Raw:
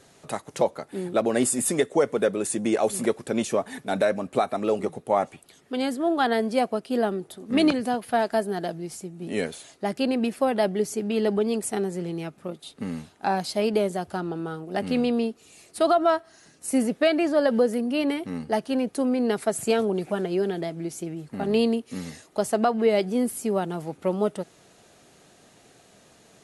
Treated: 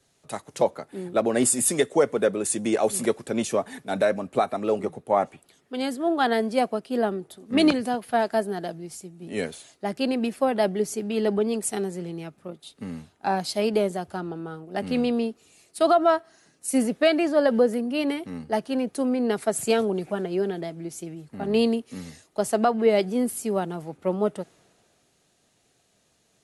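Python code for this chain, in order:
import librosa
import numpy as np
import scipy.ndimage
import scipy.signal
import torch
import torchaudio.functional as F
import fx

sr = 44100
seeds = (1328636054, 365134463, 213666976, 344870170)

y = fx.band_widen(x, sr, depth_pct=40)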